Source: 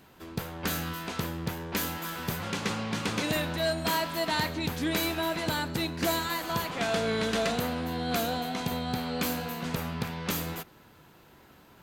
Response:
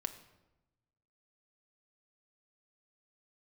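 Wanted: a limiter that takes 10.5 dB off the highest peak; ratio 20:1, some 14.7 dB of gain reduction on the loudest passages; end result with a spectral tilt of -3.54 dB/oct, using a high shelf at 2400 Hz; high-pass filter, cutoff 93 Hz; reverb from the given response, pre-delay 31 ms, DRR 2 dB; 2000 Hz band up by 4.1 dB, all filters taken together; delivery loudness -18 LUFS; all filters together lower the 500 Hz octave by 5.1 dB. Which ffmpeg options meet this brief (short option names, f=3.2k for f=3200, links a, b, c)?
-filter_complex "[0:a]highpass=93,equalizer=f=500:t=o:g=-7.5,equalizer=f=2k:t=o:g=8,highshelf=f=2.4k:g=-5,acompressor=threshold=-40dB:ratio=20,alimiter=level_in=11dB:limit=-24dB:level=0:latency=1,volume=-11dB,asplit=2[a][b];[1:a]atrim=start_sample=2205,adelay=31[c];[b][c]afir=irnorm=-1:irlink=0,volume=-1.5dB[d];[a][d]amix=inputs=2:normalize=0,volume=24dB"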